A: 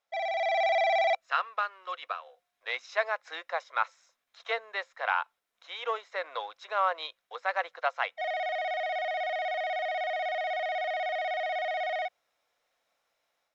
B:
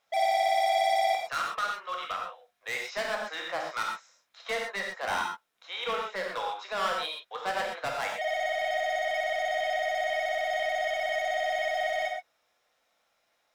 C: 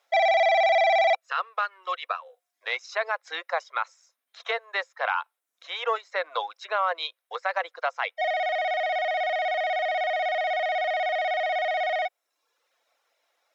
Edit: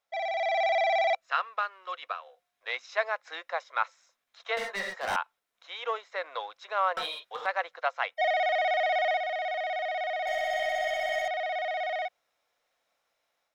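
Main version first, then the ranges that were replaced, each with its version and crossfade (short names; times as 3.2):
A
4.57–5.16 from B
6.97–7.46 from B
8.14–9.17 from C
10.27–11.28 from B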